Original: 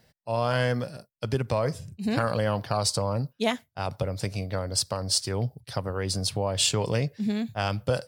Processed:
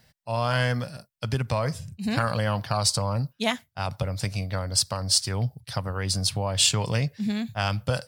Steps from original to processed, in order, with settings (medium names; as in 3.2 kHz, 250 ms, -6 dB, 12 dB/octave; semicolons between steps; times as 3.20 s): peaking EQ 400 Hz -9 dB 1.4 oct; trim +3.5 dB